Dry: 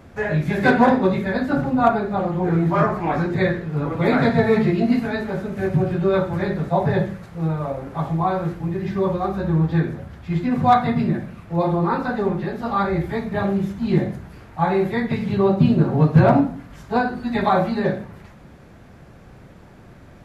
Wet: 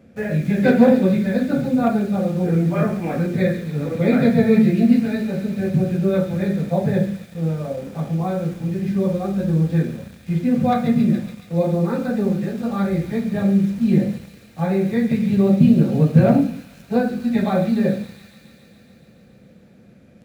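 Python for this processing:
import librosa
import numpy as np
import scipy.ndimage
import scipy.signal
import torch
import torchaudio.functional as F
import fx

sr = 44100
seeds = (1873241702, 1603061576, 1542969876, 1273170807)

p1 = fx.highpass(x, sr, hz=140.0, slope=6)
p2 = fx.peak_eq(p1, sr, hz=990.0, db=-11.0, octaves=0.56)
p3 = fx.quant_dither(p2, sr, seeds[0], bits=6, dither='none')
p4 = p2 + F.gain(torch.from_numpy(p3), -4.0).numpy()
p5 = fx.low_shelf(p4, sr, hz=250.0, db=4.0)
p6 = fx.small_body(p5, sr, hz=(210.0, 500.0, 2400.0), ring_ms=45, db=11)
p7 = p6 + fx.echo_wet_highpass(p6, sr, ms=140, feedback_pct=79, hz=3200.0, wet_db=-6.0, dry=0)
y = F.gain(torch.from_numpy(p7), -8.5).numpy()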